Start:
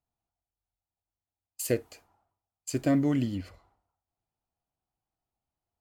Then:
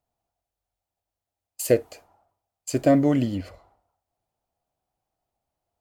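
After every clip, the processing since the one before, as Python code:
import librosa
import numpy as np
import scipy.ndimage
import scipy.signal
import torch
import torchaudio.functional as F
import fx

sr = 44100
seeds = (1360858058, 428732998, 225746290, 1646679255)

y = fx.peak_eq(x, sr, hz=600.0, db=8.5, octaves=0.89)
y = y * librosa.db_to_amplitude(4.0)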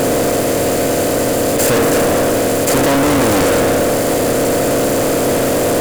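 y = fx.bin_compress(x, sr, power=0.2)
y = fx.fuzz(y, sr, gain_db=28.0, gate_db=-34.0)
y = fx.leveller(y, sr, passes=3)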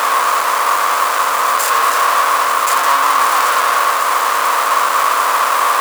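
y = fx.halfwave_hold(x, sr)
y = fx.highpass_res(y, sr, hz=1100.0, q=6.7)
y = fx.mod_noise(y, sr, seeds[0], snr_db=24)
y = y * librosa.db_to_amplitude(-3.0)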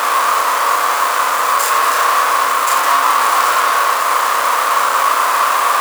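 y = fx.room_flutter(x, sr, wall_m=5.7, rt60_s=0.28)
y = y * librosa.db_to_amplitude(-1.0)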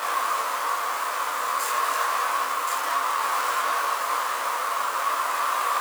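y = fx.detune_double(x, sr, cents=18)
y = y * librosa.db_to_amplitude(-8.0)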